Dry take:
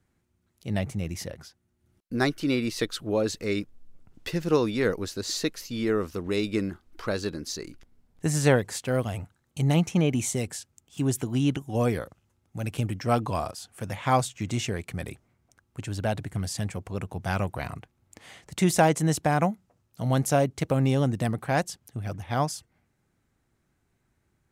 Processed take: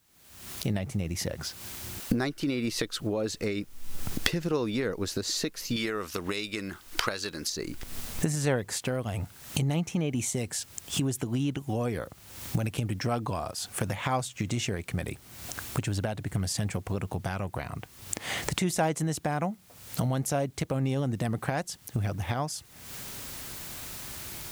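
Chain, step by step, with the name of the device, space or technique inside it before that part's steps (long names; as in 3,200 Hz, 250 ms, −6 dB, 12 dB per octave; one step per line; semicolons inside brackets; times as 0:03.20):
0:05.76–0:07.50: tilt shelving filter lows −7.5 dB, about 790 Hz
cheap recorder with automatic gain (white noise bed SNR 36 dB; camcorder AGC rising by 58 dB per second)
level −6.5 dB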